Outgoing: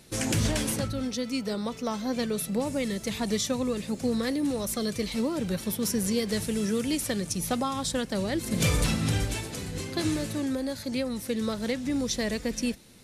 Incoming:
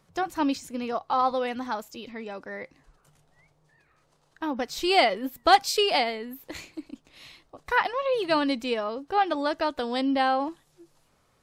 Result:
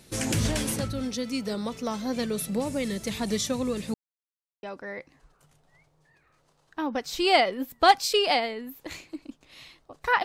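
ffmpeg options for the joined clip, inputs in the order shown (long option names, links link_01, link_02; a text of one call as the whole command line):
ffmpeg -i cue0.wav -i cue1.wav -filter_complex "[0:a]apad=whole_dur=10.24,atrim=end=10.24,asplit=2[link_01][link_02];[link_01]atrim=end=3.94,asetpts=PTS-STARTPTS,afade=type=out:start_time=3.936:duration=0.004:curve=hsin[link_03];[link_02]atrim=start=3.94:end=4.63,asetpts=PTS-STARTPTS,volume=0[link_04];[1:a]atrim=start=2.27:end=7.88,asetpts=PTS-STARTPTS,afade=type=in:duration=0.004:curve=hsin[link_05];[link_03][link_04][link_05]concat=n=3:v=0:a=1" out.wav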